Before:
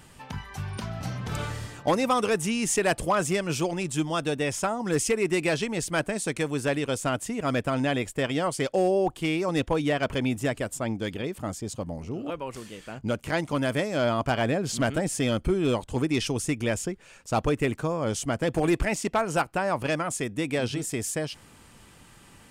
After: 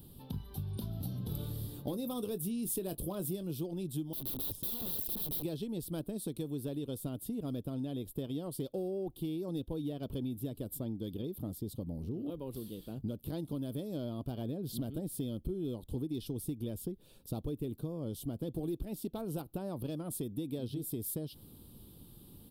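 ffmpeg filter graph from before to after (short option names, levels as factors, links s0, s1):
-filter_complex "[0:a]asettb=1/sr,asplit=3[s0][s1][s2];[s0]atrim=end=0.794[s3];[s1]atrim=start=0.79:end=3.51,asetpts=PTS-STARTPTS,afade=t=in:d=0.004:c=qsin,afade=t=out:st=2.716:d=0.004:c=qsin,highshelf=f=10000:g=8,asplit=2[s4][s5];[s5]adelay=21,volume=0.251[s6];[s4][s6]amix=inputs=2:normalize=0,atrim=end_sample=119952[s7];[s2]atrim=start=3.506[s8];[s3][s7]acrossfade=d=0.004:c1=hsin:c2=qsin[s9];[s9][s8]acrossfade=d=0.004:c1=qsin:c2=hsin,asettb=1/sr,asplit=3[s10][s11][s12];[s10]atrim=end=4.134[s13];[s11]atrim=start=4.13:end=5.43,asetpts=PTS-STARTPTS,afade=t=in:d=0.004:c=qsin,afade=t=out:st=1.296:d=0.004:c=qsin,highshelf=f=2000:g=-11,aeval=exprs='(mod(37.6*val(0)+1,2)-1)/37.6':c=same[s14];[s12]atrim=start=5.426[s15];[s13][s14]acrossfade=d=0.004:c1=hsin:c2=qsin[s16];[s16][s15]acrossfade=d=0.004:c1=qsin:c2=hsin,firequalizer=gain_entry='entry(330,0);entry(660,-12);entry(2000,-30);entry(3600,-4);entry(6600,-24);entry(12000,5)':delay=0.05:min_phase=1,acompressor=threshold=0.0178:ratio=5,highshelf=f=6700:g=5"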